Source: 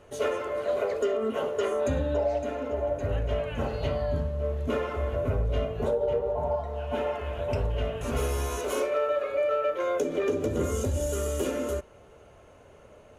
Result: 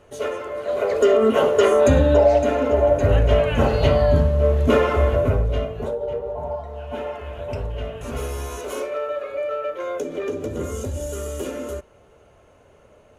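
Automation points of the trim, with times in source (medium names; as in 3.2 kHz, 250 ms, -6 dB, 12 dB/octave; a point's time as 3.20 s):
0.63 s +1.5 dB
1.11 s +12 dB
5.02 s +12 dB
5.90 s 0 dB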